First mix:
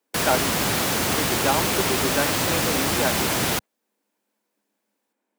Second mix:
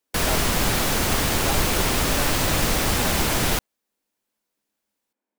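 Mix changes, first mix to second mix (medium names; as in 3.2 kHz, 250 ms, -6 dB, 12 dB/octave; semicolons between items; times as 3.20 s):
speech -8.5 dB; master: remove high-pass 110 Hz 12 dB/octave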